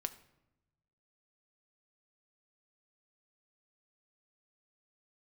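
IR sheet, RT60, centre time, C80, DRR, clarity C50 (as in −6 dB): 0.95 s, 6 ms, 17.5 dB, 10.0 dB, 15.5 dB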